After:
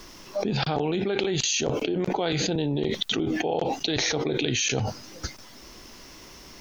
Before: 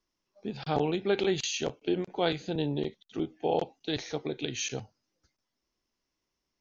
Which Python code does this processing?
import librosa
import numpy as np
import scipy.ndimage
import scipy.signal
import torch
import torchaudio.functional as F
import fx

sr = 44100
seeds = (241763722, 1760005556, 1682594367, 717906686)

y = fx.dynamic_eq(x, sr, hz=2500.0, q=0.73, threshold_db=-46.0, ratio=4.0, max_db=-6, at=(1.35, 2.0))
y = fx.env_flatten(y, sr, amount_pct=100)
y = y * librosa.db_to_amplitude(-2.5)